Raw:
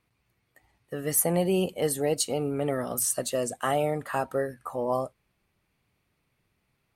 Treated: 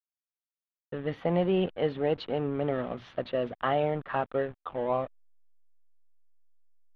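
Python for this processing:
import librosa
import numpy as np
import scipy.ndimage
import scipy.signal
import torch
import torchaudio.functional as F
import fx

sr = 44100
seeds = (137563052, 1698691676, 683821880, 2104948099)

y = fx.backlash(x, sr, play_db=-33.5)
y = scipy.signal.sosfilt(scipy.signal.ellip(4, 1.0, 60, 3500.0, 'lowpass', fs=sr, output='sos'), y)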